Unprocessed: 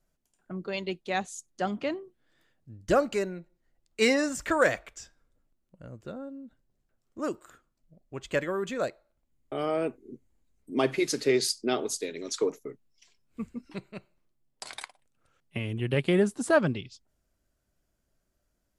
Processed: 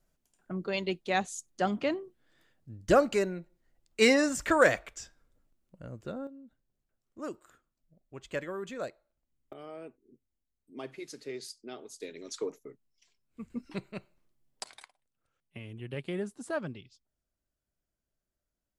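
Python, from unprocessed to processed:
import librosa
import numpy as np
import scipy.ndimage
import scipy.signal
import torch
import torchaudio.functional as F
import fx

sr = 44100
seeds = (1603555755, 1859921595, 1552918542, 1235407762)

y = fx.gain(x, sr, db=fx.steps((0.0, 1.0), (6.27, -7.0), (9.53, -16.0), (12.0, -7.5), (13.5, 1.0), (14.64, -11.5)))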